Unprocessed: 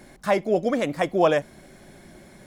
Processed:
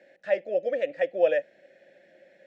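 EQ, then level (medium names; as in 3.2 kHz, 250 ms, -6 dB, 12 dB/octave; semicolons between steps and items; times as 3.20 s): vowel filter e; cabinet simulation 100–7800 Hz, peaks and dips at 130 Hz -8 dB, 240 Hz -5 dB, 410 Hz -8 dB; +5.5 dB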